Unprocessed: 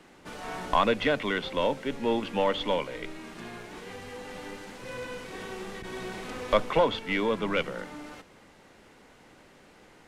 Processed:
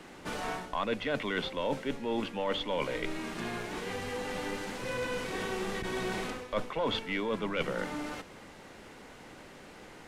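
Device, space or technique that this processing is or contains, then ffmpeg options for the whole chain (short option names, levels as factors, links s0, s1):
compression on the reversed sound: -af "areverse,acompressor=threshold=0.02:ratio=8,areverse,volume=1.78"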